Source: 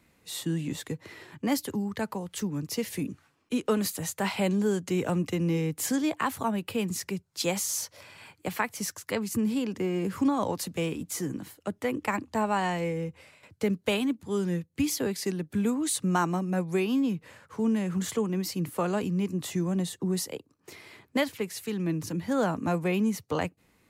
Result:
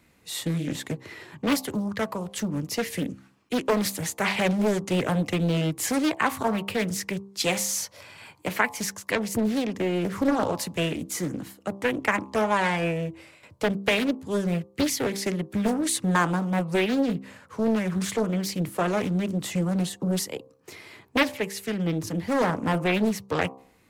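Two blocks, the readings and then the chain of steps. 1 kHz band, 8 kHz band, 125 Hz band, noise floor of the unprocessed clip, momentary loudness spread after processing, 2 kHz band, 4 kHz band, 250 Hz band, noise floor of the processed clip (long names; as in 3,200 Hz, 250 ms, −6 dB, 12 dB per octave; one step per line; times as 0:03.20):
+4.0 dB, +2.5 dB, +3.0 dB, −68 dBFS, 9 LU, +7.5 dB, +5.0 dB, +2.0 dB, −59 dBFS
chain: hum removal 65.58 Hz, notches 18
dynamic equaliser 2,100 Hz, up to +6 dB, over −48 dBFS, Q 1.9
highs frequency-modulated by the lows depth 0.76 ms
level +3.5 dB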